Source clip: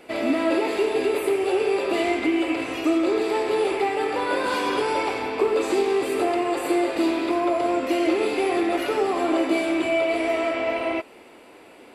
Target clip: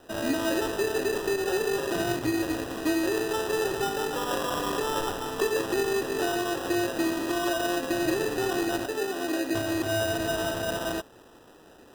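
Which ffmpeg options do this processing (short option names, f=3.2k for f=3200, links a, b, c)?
-filter_complex "[0:a]asettb=1/sr,asplit=3[a][b][c];[a]atrim=end=8.864[d];[b]atrim=start=8.86:end=9.55,asetpts=PTS-STARTPTS,afade=t=in:d=0.004:c=qsin,afade=t=out:st=0.686:d=0.004:c=qsin,equalizer=f=2.1k:t=o:w=1.9:g=-15[e];[c]atrim=start=9.546[f];[d][e]acrossfade=d=0.004:c1=hsin:c2=qsin[g];[g][f]acrossfade=d=0.004:c1=qsin:c2=hsin,acrusher=samples=20:mix=1:aa=0.000001,volume=-5dB"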